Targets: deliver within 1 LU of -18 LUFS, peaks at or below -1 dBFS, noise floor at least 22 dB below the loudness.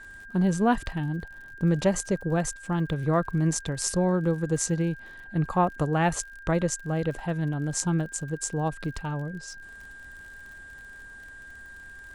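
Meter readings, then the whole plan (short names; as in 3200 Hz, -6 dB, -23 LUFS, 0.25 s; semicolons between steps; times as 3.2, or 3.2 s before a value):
ticks 48/s; steady tone 1600 Hz; tone level -43 dBFS; loudness -27.5 LUFS; peak -9.0 dBFS; loudness target -18.0 LUFS
-> de-click; notch 1600 Hz, Q 30; gain +9.5 dB; limiter -1 dBFS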